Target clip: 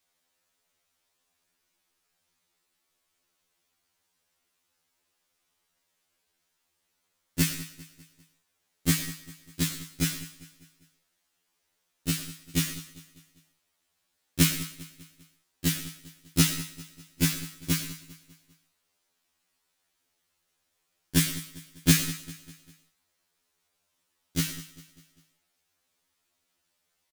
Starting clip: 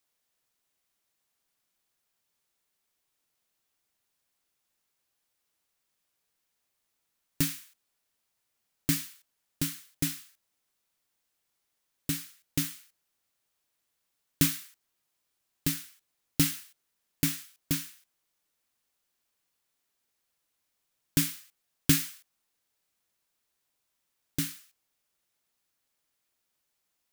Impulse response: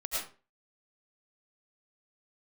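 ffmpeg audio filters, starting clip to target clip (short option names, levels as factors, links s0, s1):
-filter_complex "[0:a]highshelf=f=12000:g=-8,aecho=1:1:199|398|597|796:0.141|0.0678|0.0325|0.0156,asplit=2[s0][s1];[1:a]atrim=start_sample=2205,afade=t=out:st=0.25:d=0.01,atrim=end_sample=11466[s2];[s1][s2]afir=irnorm=-1:irlink=0,volume=0.178[s3];[s0][s3]amix=inputs=2:normalize=0,afftfilt=real='re*2*eq(mod(b,4),0)':imag='im*2*eq(mod(b,4),0)':win_size=2048:overlap=0.75,volume=2.11"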